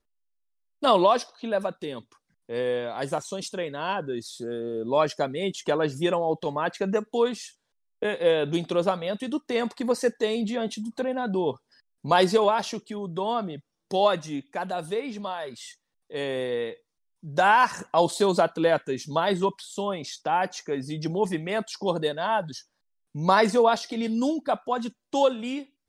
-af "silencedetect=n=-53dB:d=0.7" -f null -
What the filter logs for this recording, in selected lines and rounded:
silence_start: 0.00
silence_end: 0.82 | silence_duration: 0.82